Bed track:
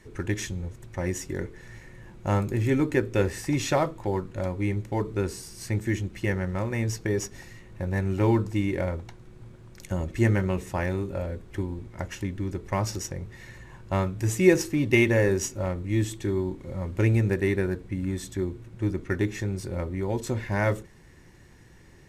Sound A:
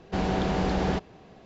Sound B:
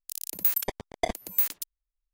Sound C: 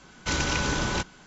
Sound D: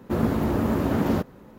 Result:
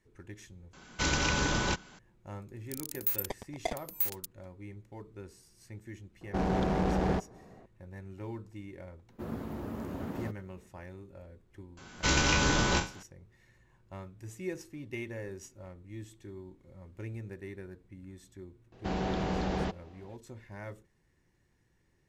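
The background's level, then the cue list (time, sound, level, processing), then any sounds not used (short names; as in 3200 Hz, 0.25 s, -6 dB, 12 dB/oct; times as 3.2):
bed track -19 dB
0.73 replace with C -2.5 dB
2.62 add B -6.5 dB
6.21 add A -2.5 dB + Wiener smoothing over 15 samples
9.09 add D -15.5 dB
11.77 add C -1 dB + spectral trails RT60 0.33 s
18.72 add A -6 dB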